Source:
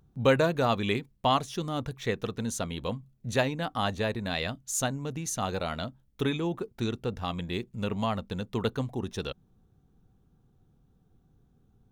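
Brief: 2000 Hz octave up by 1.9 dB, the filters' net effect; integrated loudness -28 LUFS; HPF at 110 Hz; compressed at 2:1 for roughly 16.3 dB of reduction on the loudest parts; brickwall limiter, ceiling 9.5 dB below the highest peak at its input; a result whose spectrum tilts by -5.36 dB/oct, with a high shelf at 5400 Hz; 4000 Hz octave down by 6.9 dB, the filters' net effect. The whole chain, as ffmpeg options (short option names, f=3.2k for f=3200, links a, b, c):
-af "highpass=110,equalizer=f=2k:t=o:g=6,equalizer=f=4k:t=o:g=-9,highshelf=f=5.4k:g=-8.5,acompressor=threshold=-48dB:ratio=2,volume=18dB,alimiter=limit=-15.5dB:level=0:latency=1"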